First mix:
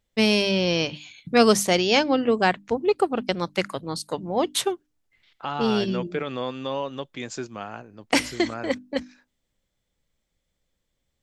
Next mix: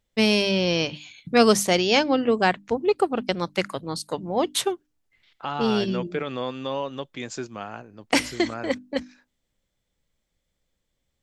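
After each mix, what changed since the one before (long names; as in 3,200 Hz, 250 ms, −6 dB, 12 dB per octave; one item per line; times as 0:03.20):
nothing changed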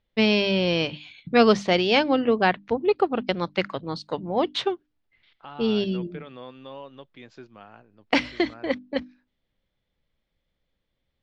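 second voice −11.5 dB
master: add low-pass filter 4,300 Hz 24 dB per octave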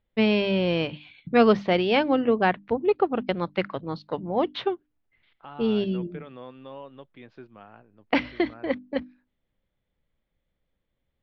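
master: add high-frequency loss of the air 270 metres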